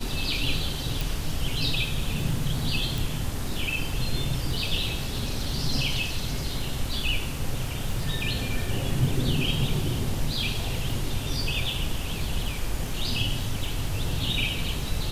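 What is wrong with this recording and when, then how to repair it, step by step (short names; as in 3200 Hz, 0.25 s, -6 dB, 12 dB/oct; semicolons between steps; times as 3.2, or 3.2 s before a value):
crackle 25/s -32 dBFS
1.01 pop
2.98 pop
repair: de-click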